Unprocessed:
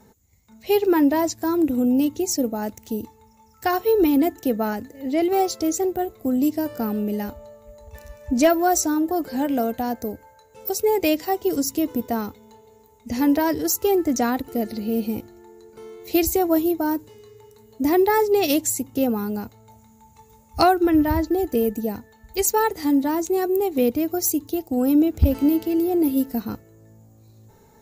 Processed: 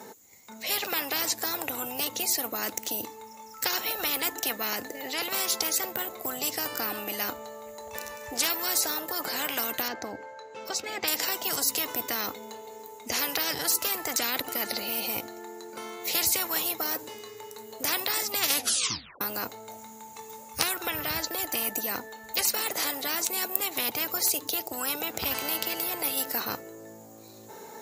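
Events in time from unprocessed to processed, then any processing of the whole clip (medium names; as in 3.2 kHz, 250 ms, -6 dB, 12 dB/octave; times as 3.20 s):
9.88–11.08 s: distance through air 150 m
18.52 s: tape stop 0.69 s
whole clip: high-pass 370 Hz 12 dB/octave; dynamic bell 810 Hz, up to +8 dB, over -41 dBFS, Q 3.9; spectrum-flattening compressor 10:1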